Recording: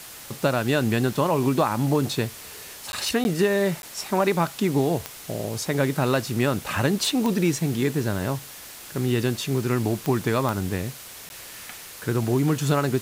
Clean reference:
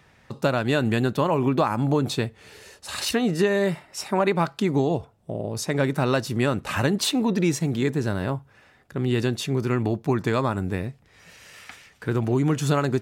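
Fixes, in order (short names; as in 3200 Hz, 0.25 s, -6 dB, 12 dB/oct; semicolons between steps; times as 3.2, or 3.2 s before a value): de-click; interpolate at 2.92/3.24/3.82/11.29, 11 ms; noise print and reduce 13 dB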